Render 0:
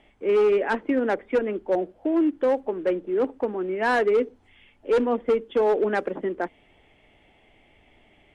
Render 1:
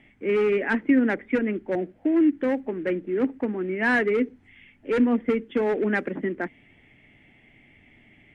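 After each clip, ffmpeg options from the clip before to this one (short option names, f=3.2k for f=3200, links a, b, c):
-af "equalizer=f=125:t=o:w=1:g=11,equalizer=f=250:t=o:w=1:g=9,equalizer=f=500:t=o:w=1:g=-3,equalizer=f=1k:t=o:w=1:g=-4,equalizer=f=2k:t=o:w=1:g=12,equalizer=f=4k:t=o:w=1:g=-3,volume=-4dB"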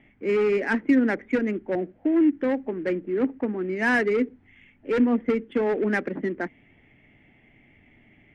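-af "adynamicsmooth=sensitivity=4:basefreq=3.2k"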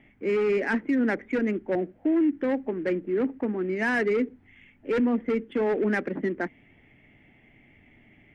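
-af "alimiter=limit=-17.5dB:level=0:latency=1:release=16"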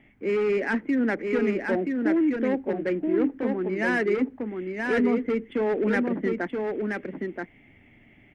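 -af "aecho=1:1:977:0.631"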